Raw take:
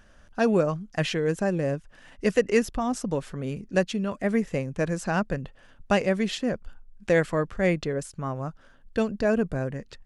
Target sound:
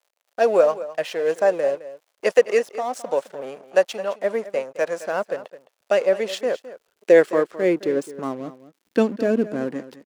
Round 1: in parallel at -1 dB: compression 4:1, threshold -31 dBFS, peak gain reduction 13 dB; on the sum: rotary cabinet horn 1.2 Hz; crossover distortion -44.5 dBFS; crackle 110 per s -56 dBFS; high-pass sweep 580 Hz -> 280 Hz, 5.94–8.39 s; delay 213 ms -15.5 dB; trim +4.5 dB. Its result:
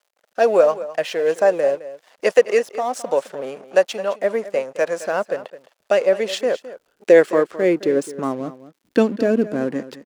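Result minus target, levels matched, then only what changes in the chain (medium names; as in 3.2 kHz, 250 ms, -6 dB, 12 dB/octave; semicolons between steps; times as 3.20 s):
compression: peak gain reduction +13 dB
remove: compression 4:1, threshold -31 dBFS, peak gain reduction 13 dB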